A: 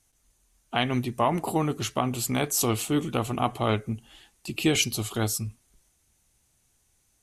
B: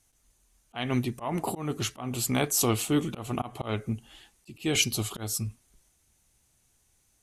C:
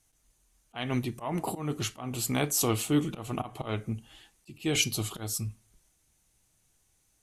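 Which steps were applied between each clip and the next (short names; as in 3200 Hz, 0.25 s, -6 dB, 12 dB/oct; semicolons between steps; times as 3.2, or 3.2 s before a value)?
auto swell 0.203 s
reverb RT60 0.30 s, pre-delay 6 ms, DRR 14.5 dB; gain -2 dB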